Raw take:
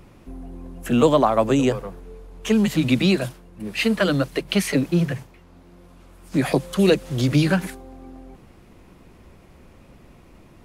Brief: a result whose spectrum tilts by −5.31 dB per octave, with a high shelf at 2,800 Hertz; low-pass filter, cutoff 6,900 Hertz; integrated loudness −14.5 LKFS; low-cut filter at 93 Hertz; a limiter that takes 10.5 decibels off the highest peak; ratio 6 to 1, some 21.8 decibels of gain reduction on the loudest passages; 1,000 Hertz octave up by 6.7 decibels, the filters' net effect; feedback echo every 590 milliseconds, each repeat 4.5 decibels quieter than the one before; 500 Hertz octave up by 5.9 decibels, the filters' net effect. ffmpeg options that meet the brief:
ffmpeg -i in.wav -af "highpass=93,lowpass=6900,equalizer=frequency=500:width_type=o:gain=5.5,equalizer=frequency=1000:width_type=o:gain=6,highshelf=frequency=2800:gain=5.5,acompressor=threshold=-31dB:ratio=6,alimiter=level_in=3.5dB:limit=-24dB:level=0:latency=1,volume=-3.5dB,aecho=1:1:590|1180|1770|2360|2950|3540|4130|4720|5310:0.596|0.357|0.214|0.129|0.0772|0.0463|0.0278|0.0167|0.01,volume=22.5dB" out.wav

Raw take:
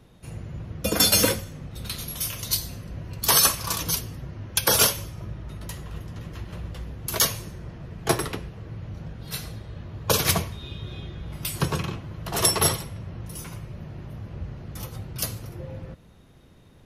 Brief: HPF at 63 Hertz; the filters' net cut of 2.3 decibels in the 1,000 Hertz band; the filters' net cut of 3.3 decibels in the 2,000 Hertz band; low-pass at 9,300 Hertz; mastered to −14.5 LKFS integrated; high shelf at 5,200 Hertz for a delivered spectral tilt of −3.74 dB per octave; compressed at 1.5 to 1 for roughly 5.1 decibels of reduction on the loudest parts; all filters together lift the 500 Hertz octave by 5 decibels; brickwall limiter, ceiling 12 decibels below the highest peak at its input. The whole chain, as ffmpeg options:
ffmpeg -i in.wav -af "highpass=63,lowpass=9300,equalizer=frequency=500:width_type=o:gain=7,equalizer=frequency=1000:width_type=o:gain=-4,equalizer=frequency=2000:width_type=o:gain=-4.5,highshelf=frequency=5200:gain=5,acompressor=threshold=-27dB:ratio=1.5,volume=18.5dB,alimiter=limit=0dB:level=0:latency=1" out.wav

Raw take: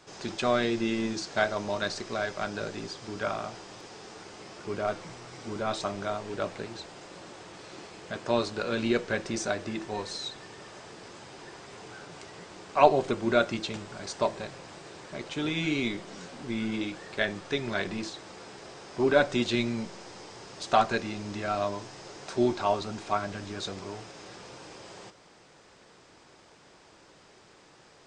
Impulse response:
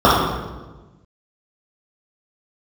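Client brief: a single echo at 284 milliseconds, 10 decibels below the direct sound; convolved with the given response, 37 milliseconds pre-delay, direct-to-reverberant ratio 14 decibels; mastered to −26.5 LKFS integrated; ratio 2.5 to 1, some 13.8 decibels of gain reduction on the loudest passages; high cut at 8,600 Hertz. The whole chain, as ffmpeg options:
-filter_complex "[0:a]lowpass=8600,acompressor=threshold=-35dB:ratio=2.5,aecho=1:1:284:0.316,asplit=2[link_01][link_02];[1:a]atrim=start_sample=2205,adelay=37[link_03];[link_02][link_03]afir=irnorm=-1:irlink=0,volume=-44.5dB[link_04];[link_01][link_04]amix=inputs=2:normalize=0,volume=11.5dB"

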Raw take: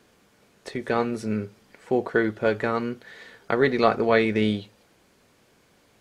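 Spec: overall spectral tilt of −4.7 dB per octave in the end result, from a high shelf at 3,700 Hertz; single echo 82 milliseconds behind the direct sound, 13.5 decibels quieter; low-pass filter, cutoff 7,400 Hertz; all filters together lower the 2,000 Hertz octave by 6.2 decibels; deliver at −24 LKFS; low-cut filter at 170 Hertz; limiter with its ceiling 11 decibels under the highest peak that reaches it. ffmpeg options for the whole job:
ffmpeg -i in.wav -af "highpass=170,lowpass=7400,equalizer=frequency=2000:width_type=o:gain=-9,highshelf=frequency=3700:gain=3,alimiter=limit=-16.5dB:level=0:latency=1,aecho=1:1:82:0.211,volume=5dB" out.wav

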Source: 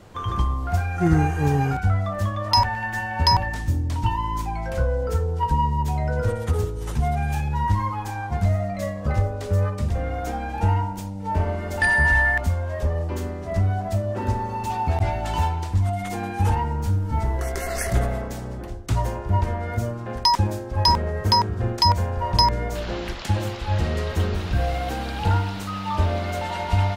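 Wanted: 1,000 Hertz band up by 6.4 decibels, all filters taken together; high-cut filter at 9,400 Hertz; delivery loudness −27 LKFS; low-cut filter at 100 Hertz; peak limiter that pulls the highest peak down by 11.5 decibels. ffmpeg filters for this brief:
ffmpeg -i in.wav -af "highpass=100,lowpass=9400,equalizer=frequency=1000:width_type=o:gain=7,volume=-2.5dB,alimiter=limit=-15.5dB:level=0:latency=1" out.wav

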